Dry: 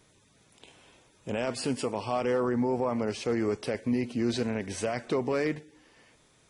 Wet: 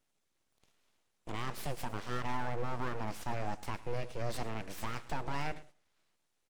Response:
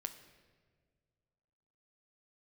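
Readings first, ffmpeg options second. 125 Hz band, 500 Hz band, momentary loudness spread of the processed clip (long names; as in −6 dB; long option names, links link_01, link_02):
−3.5 dB, −13.5 dB, 4 LU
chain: -af "aeval=exprs='abs(val(0))':channel_layout=same,agate=range=-11dB:threshold=-49dB:ratio=16:detection=peak,aecho=1:1:108:0.112,volume=-5.5dB"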